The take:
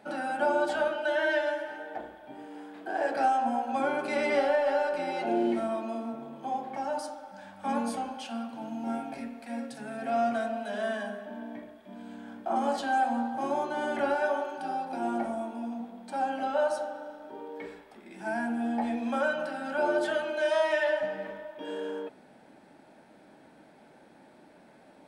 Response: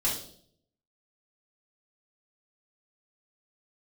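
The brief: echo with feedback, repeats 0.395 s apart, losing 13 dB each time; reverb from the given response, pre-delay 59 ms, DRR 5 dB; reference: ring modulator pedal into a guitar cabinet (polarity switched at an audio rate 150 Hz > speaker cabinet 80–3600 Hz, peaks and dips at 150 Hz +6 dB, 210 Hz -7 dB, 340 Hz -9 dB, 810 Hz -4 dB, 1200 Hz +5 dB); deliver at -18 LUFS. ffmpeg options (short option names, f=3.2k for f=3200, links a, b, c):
-filter_complex "[0:a]aecho=1:1:395|790|1185:0.224|0.0493|0.0108,asplit=2[a][b];[1:a]atrim=start_sample=2205,adelay=59[c];[b][c]afir=irnorm=-1:irlink=0,volume=-12.5dB[d];[a][d]amix=inputs=2:normalize=0,aeval=exprs='val(0)*sgn(sin(2*PI*150*n/s))':c=same,highpass=80,equalizer=f=150:t=q:w=4:g=6,equalizer=f=210:t=q:w=4:g=-7,equalizer=f=340:t=q:w=4:g=-9,equalizer=f=810:t=q:w=4:g=-4,equalizer=f=1.2k:t=q:w=4:g=5,lowpass=f=3.6k:w=0.5412,lowpass=f=3.6k:w=1.3066,volume=12dB"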